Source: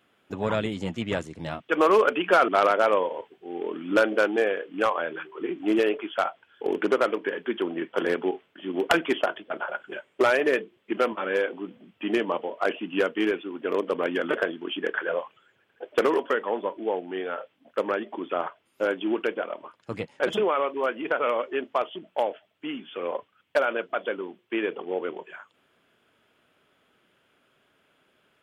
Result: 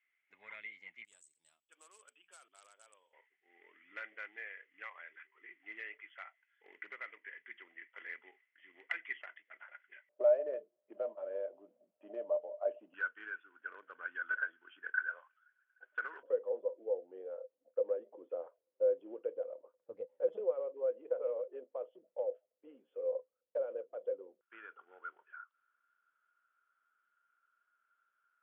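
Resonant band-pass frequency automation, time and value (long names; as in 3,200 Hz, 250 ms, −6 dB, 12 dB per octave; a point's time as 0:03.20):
resonant band-pass, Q 18
2,100 Hz
from 0:01.05 8,000 Hz
from 0:03.13 2,000 Hz
from 0:10.09 600 Hz
from 0:12.94 1,500 Hz
from 0:16.23 510 Hz
from 0:24.41 1,400 Hz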